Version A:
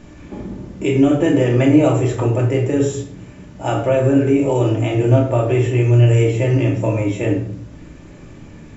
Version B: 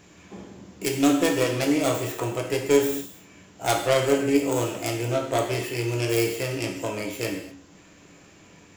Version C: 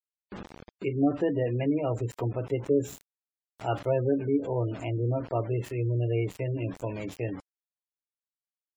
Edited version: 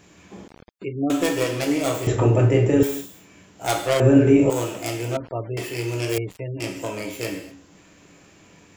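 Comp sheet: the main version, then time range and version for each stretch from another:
B
0.48–1.1 from C
2.07–2.83 from A
4–4.5 from A
5.17–5.57 from C
6.18–6.6 from C

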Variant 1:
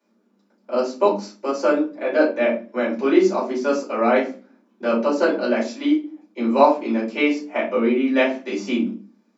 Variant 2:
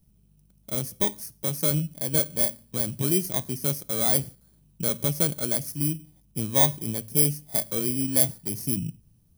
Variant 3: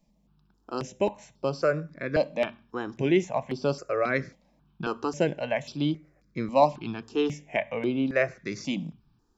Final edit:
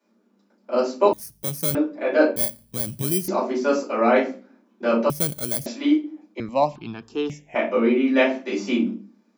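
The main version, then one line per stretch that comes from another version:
1
1.13–1.75 from 2
2.36–3.28 from 2
5.1–5.66 from 2
6.4–7.55 from 3

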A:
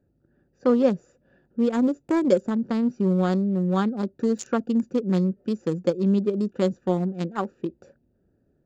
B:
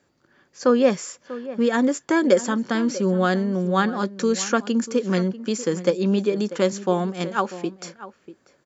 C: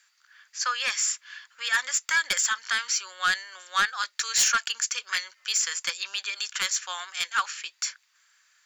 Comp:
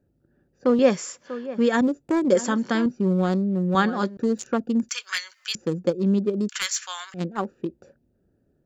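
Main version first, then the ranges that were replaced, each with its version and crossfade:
A
0.79–1.81 from B
2.35–2.86 from B
3.75–4.17 from B
4.89–5.55 from C
6.49–7.14 from C

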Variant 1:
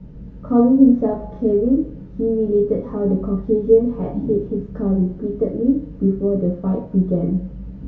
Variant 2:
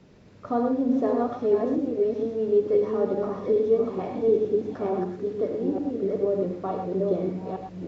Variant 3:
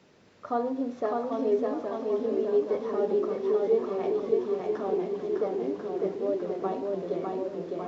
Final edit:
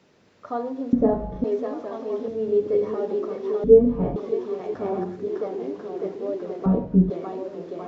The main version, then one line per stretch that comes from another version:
3
0.93–1.44 from 1
2.28–2.94 from 2
3.64–4.16 from 1
4.74–5.28 from 2
6.66–7.1 from 1

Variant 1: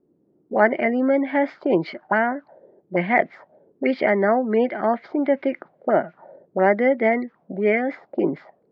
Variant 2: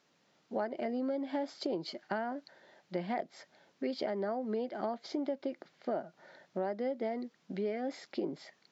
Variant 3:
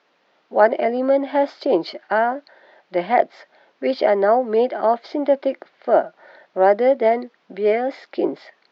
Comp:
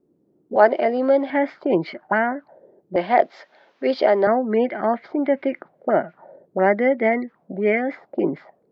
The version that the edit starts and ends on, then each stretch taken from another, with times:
1
0.56–1.3 from 3
2.96–4.27 from 3
not used: 2

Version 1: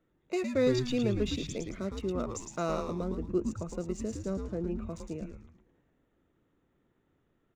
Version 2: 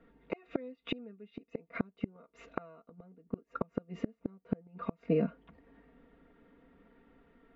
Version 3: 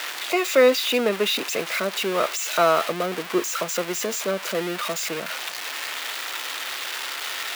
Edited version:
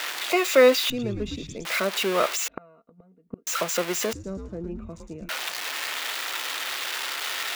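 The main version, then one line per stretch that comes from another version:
3
0.9–1.65 from 1
2.48–3.47 from 2
4.13–5.29 from 1

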